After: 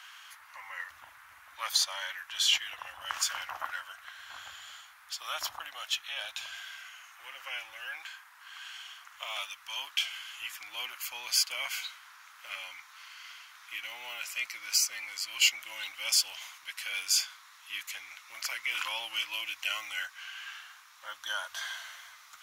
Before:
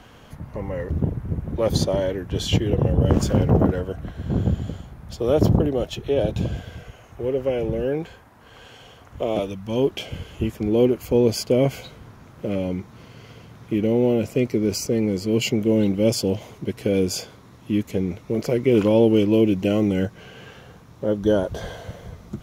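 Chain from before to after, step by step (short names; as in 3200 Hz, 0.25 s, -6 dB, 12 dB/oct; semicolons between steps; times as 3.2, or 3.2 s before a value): inverse Chebyshev high-pass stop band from 470 Hz, stop band 50 dB; in parallel at -6 dB: soft clip -21.5 dBFS, distortion -16 dB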